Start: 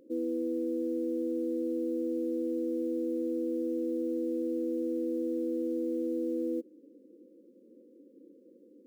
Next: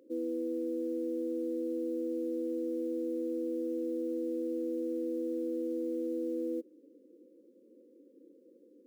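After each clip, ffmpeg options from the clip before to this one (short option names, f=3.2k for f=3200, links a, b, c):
-af "highpass=270,volume=-1dB"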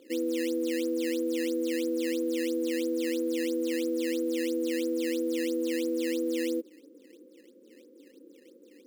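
-af "acrusher=samples=11:mix=1:aa=0.000001:lfo=1:lforange=17.6:lforate=3,volume=5dB"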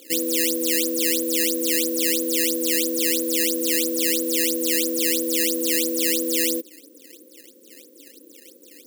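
-af "crystalizer=i=8:c=0,volume=2dB"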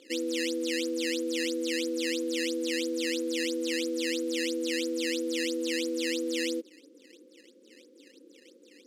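-af "lowpass=4.6k,volume=-5dB"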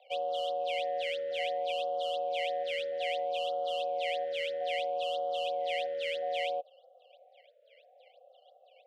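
-af "highpass=f=240:t=q:w=0.5412,highpass=f=240:t=q:w=1.307,lowpass=f=3.1k:t=q:w=0.5176,lowpass=f=3.1k:t=q:w=0.7071,lowpass=f=3.1k:t=q:w=1.932,afreqshift=230,aeval=exprs='0.0841*(cos(1*acos(clip(val(0)/0.0841,-1,1)))-cos(1*PI/2))+0.00299*(cos(7*acos(clip(val(0)/0.0841,-1,1)))-cos(7*PI/2))':c=same,afftfilt=real='re*(1-between(b*sr/1024,940*pow(2000/940,0.5+0.5*sin(2*PI*0.62*pts/sr))/1.41,940*pow(2000/940,0.5+0.5*sin(2*PI*0.62*pts/sr))*1.41))':imag='im*(1-between(b*sr/1024,940*pow(2000/940,0.5+0.5*sin(2*PI*0.62*pts/sr))/1.41,940*pow(2000/940,0.5+0.5*sin(2*PI*0.62*pts/sr))*1.41))':win_size=1024:overlap=0.75,volume=-1dB"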